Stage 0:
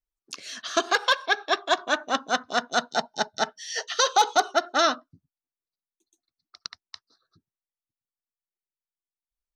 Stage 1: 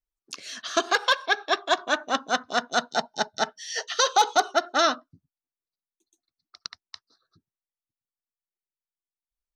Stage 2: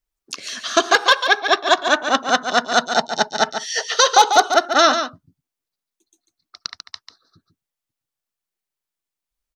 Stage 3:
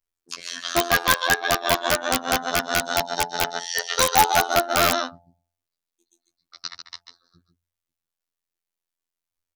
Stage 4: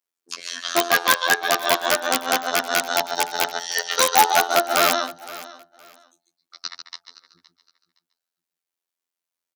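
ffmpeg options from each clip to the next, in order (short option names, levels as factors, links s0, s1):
-af anull
-af "aecho=1:1:143:0.376,volume=2.37"
-af "bandreject=f=96.43:t=h:w=4,bandreject=f=192.86:t=h:w=4,bandreject=f=289.29:t=h:w=4,bandreject=f=385.72:t=h:w=4,bandreject=f=482.15:t=h:w=4,bandreject=f=578.58:t=h:w=4,bandreject=f=675.01:t=h:w=4,bandreject=f=771.44:t=h:w=4,bandreject=f=867.87:t=h:w=4,afftfilt=real='hypot(re,im)*cos(PI*b)':imag='0':win_size=2048:overlap=0.75,aeval=exprs='(mod(1.58*val(0)+1,2)-1)/1.58':c=same"
-af "highpass=270,aecho=1:1:516|1032:0.126|0.029,volume=1.19"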